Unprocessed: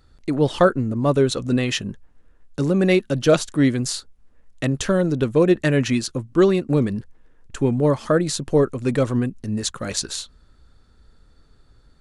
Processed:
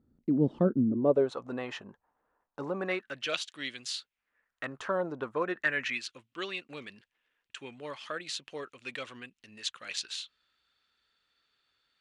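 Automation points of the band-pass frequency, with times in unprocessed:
band-pass, Q 2.4
0.85 s 230 Hz
1.33 s 910 Hz
2.75 s 910 Hz
3.38 s 3100 Hz
3.94 s 3100 Hz
5.05 s 850 Hz
6.13 s 2800 Hz

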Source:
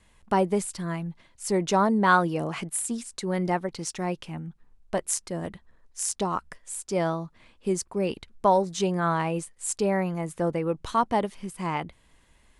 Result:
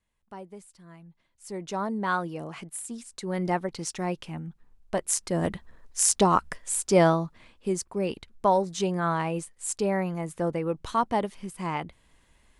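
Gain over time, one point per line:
0.8 s -19.5 dB
1.9 s -7.5 dB
2.88 s -7.5 dB
3.53 s -0.5 dB
5.03 s -0.5 dB
5.46 s +7 dB
7.03 s +7 dB
7.68 s -1.5 dB

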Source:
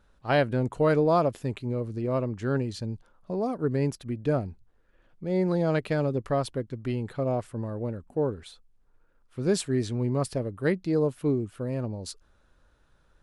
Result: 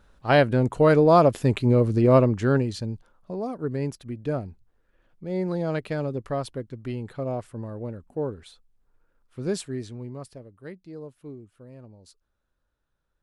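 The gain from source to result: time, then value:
1.01 s +5 dB
1.66 s +11 dB
2.16 s +11 dB
2.62 s +4.5 dB
3.36 s -2 dB
9.45 s -2 dB
10.49 s -15 dB

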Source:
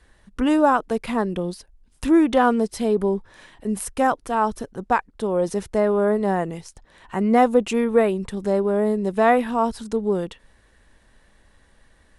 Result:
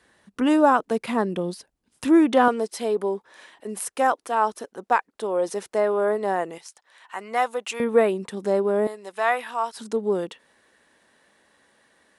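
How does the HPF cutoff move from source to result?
170 Hz
from 2.48 s 400 Hz
from 6.58 s 900 Hz
from 7.8 s 250 Hz
from 8.87 s 920 Hz
from 9.77 s 260 Hz

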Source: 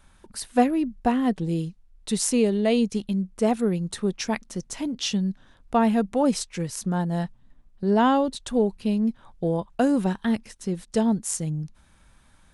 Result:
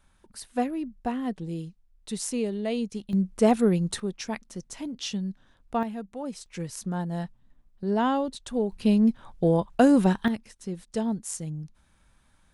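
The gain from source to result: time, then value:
-7.5 dB
from 3.13 s +2 dB
from 4 s -6 dB
from 5.83 s -13.5 dB
from 6.46 s -5 dB
from 8.72 s +3 dB
from 10.28 s -6 dB

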